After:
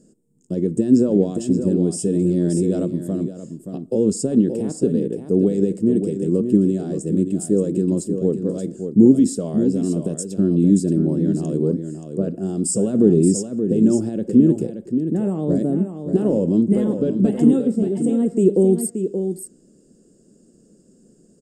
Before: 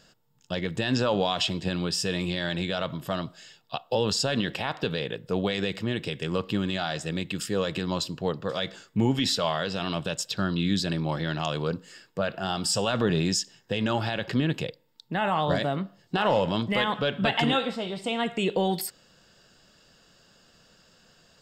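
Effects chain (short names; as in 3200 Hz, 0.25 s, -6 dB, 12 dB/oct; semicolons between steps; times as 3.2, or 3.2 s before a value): EQ curve 120 Hz 0 dB, 220 Hz +14 dB, 380 Hz +14 dB, 880 Hz -17 dB, 3800 Hz -24 dB, 9000 Hz +12 dB, 14000 Hz -12 dB; echo 0.577 s -8 dB; 2.15–2.85 fast leveller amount 50%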